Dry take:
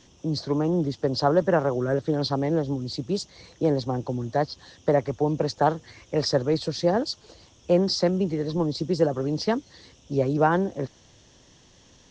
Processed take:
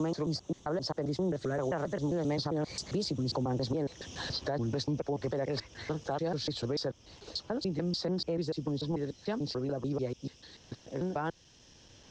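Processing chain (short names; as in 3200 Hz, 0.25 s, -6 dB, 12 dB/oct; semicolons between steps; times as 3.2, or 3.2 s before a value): slices in reverse order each 0.139 s, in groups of 5; Doppler pass-by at 3.66, 18 m/s, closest 15 m; compressor 2:1, threshold -38 dBFS, peak gain reduction 11.5 dB; limiter -33 dBFS, peak gain reduction 11 dB; three-band squash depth 40%; gain +9 dB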